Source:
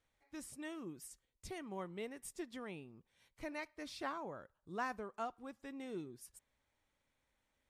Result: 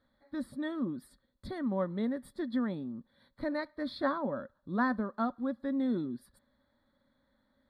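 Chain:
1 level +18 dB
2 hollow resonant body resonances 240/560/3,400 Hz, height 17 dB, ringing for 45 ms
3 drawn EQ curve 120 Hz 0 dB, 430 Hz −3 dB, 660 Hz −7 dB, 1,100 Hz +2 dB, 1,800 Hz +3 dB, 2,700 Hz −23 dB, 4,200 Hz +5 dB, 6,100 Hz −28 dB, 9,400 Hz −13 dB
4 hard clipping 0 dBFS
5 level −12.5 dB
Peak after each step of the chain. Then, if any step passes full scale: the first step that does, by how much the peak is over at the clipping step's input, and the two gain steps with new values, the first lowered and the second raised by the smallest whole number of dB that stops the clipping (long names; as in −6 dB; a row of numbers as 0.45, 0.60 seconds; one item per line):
−9.0, −1.0, −5.0, −5.0, −17.5 dBFS
no step passes full scale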